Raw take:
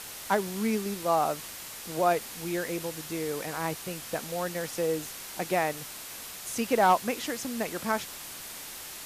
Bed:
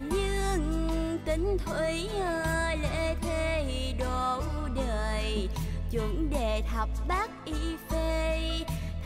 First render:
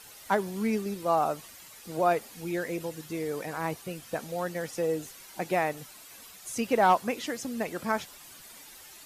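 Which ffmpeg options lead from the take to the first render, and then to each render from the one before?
ffmpeg -i in.wav -af "afftdn=noise_reduction=11:noise_floor=-42" out.wav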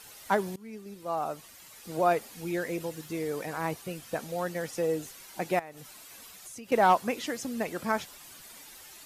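ffmpeg -i in.wav -filter_complex "[0:a]asettb=1/sr,asplit=3[link_01][link_02][link_03];[link_01]atrim=end=2.654[link_04];[link_02]atrim=start=2.65:end=3.48,asetpts=PTS-STARTPTS,afade=type=in:duration=0.004:curve=qsin,afade=type=out:start_time=0.826:duration=0.004:curve=qsin,aeval=exprs='val(0)*gte(abs(val(0)),0.00112)':channel_layout=same[link_05];[link_03]atrim=start=3.476[link_06];[link_04][link_05]acrossfade=duration=0.004:curve1=hsin:curve2=qsin[link_07];[link_07][link_06]acrossfade=duration=0.004:curve1=qsin:curve2=hsin,asettb=1/sr,asplit=3[link_08][link_09][link_10];[link_08]atrim=end=5.594[link_11];[link_09]atrim=start=5.59:end=6.72,asetpts=PTS-STARTPTS,afade=type=in:duration=0.004:curve=qsin,afade=type=out:start_time=1.126:duration=0.004:curve=qsin,acompressor=threshold=-42dB:ratio=5:attack=3.2:release=140:knee=1:detection=peak[link_12];[link_10]atrim=start=6.716[link_13];[link_11][link_12]acrossfade=duration=0.004:curve1=hsin:curve2=qsin[link_14];[link_14][link_13]acrossfade=duration=0.004:curve1=qsin:curve2=hsin,asplit=2[link_15][link_16];[link_15]atrim=end=0.56,asetpts=PTS-STARTPTS,afade=type=out:start_time=0.556:duration=0.004:curve=hsin:silence=0.0707946[link_17];[link_16]atrim=start=0.56,asetpts=PTS-STARTPTS,afade=type=in:duration=1.37:silence=0.0707946[link_18];[link_17][link_18]concat=n=2:v=0:a=1" out.wav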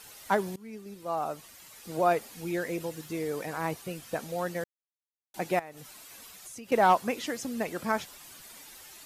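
ffmpeg -i in.wav -filter_complex "[0:a]asplit=3[link_01][link_02][link_03];[link_01]atrim=end=4.64,asetpts=PTS-STARTPTS,afade=type=out:start_time=4.636:duration=0.004:curve=hsin[link_04];[link_02]atrim=start=4.64:end=5.34,asetpts=PTS-STARTPTS,volume=0[link_05];[link_03]atrim=start=5.34,asetpts=PTS-STARTPTS,afade=type=in:duration=0.004:curve=hsin[link_06];[link_04][link_05][link_06]concat=n=3:v=0:a=1" out.wav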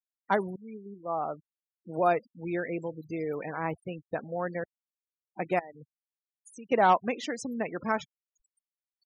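ffmpeg -i in.wav -af "afftfilt=real='re*gte(hypot(re,im),0.0141)':imag='im*gte(hypot(re,im),0.0141)':win_size=1024:overlap=0.75" out.wav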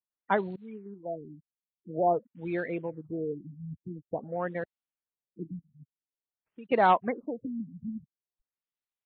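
ffmpeg -i in.wav -af "acrusher=bits=6:mode=log:mix=0:aa=0.000001,afftfilt=real='re*lt(b*sr/1024,250*pow(4500/250,0.5+0.5*sin(2*PI*0.48*pts/sr)))':imag='im*lt(b*sr/1024,250*pow(4500/250,0.5+0.5*sin(2*PI*0.48*pts/sr)))':win_size=1024:overlap=0.75" out.wav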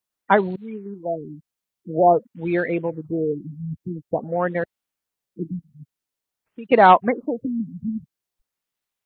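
ffmpeg -i in.wav -af "volume=10dB" out.wav

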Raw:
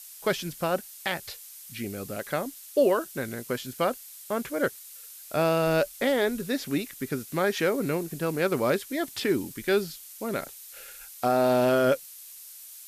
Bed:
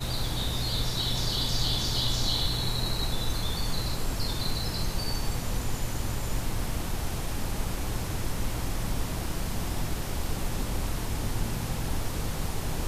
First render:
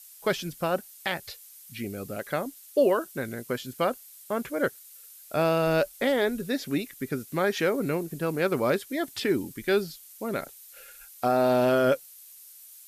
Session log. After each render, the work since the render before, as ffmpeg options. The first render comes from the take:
ffmpeg -i in.wav -af "afftdn=noise_reduction=6:noise_floor=-46" out.wav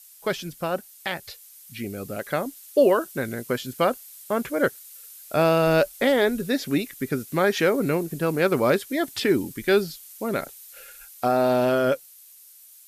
ffmpeg -i in.wav -af "dynaudnorm=framelen=310:gausssize=13:maxgain=4.5dB" out.wav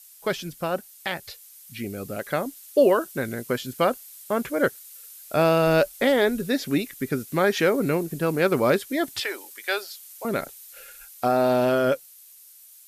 ffmpeg -i in.wav -filter_complex "[0:a]asettb=1/sr,asplit=3[link_01][link_02][link_03];[link_01]atrim=end=9.204[link_04];[link_02]atrim=start=9.2:end=10.25,asetpts=PTS-STARTPTS,afade=type=in:duration=0.004:curve=qsin,afade=type=out:start_time=1.046:duration=0.004:curve=qsin,highpass=frequency=580:width=0.5412,highpass=frequency=580:width=1.3066[link_05];[link_03]atrim=start=10.246[link_06];[link_04][link_05]acrossfade=duration=0.004:curve1=hsin:curve2=qsin[link_07];[link_07][link_06]acrossfade=duration=0.004:curve1=qsin:curve2=hsin" out.wav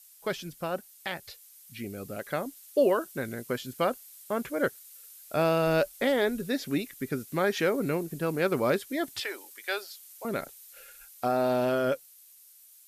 ffmpeg -i in.wav -af "volume=-5.5dB" out.wav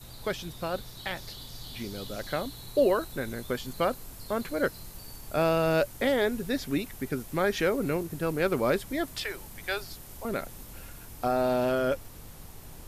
ffmpeg -i in.wav -i bed.wav -filter_complex "[1:a]volume=-16dB[link_01];[0:a][link_01]amix=inputs=2:normalize=0" out.wav

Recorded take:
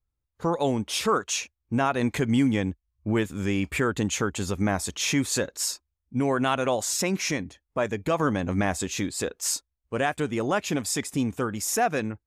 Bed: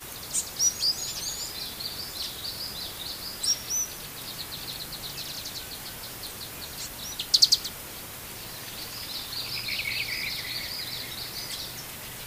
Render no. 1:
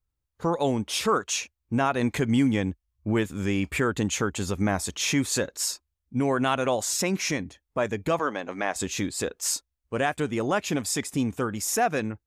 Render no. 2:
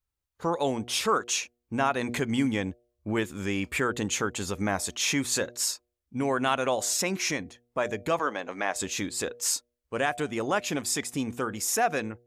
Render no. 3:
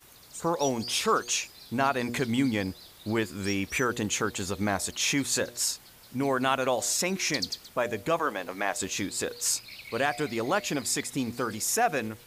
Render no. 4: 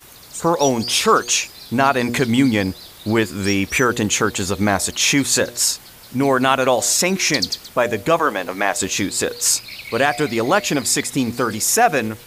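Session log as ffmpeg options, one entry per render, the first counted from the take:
ffmpeg -i in.wav -filter_complex "[0:a]asettb=1/sr,asplit=3[link_01][link_02][link_03];[link_01]atrim=end=8.194[link_04];[link_02]atrim=start=8.19:end=8.76,asetpts=PTS-STARTPTS,afade=type=in:duration=0.004:curve=qsin,afade=type=out:start_time=0.566:duration=0.004:curve=qsin,highpass=430,lowpass=5600[link_05];[link_03]atrim=start=8.756[link_06];[link_04][link_05]acrossfade=duration=0.004:curve1=hsin:curve2=qsin[link_07];[link_07][link_06]acrossfade=duration=0.004:curve1=qsin:curve2=hsin" out.wav
ffmpeg -i in.wav -af "lowshelf=frequency=300:gain=-7,bandreject=frequency=120:width_type=h:width=4,bandreject=frequency=240:width_type=h:width=4,bandreject=frequency=360:width_type=h:width=4,bandreject=frequency=480:width_type=h:width=4,bandreject=frequency=600:width_type=h:width=4,bandreject=frequency=720:width_type=h:width=4" out.wav
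ffmpeg -i in.wav -i bed.wav -filter_complex "[1:a]volume=-14dB[link_01];[0:a][link_01]amix=inputs=2:normalize=0" out.wav
ffmpeg -i in.wav -af "volume=10.5dB,alimiter=limit=-3dB:level=0:latency=1" out.wav

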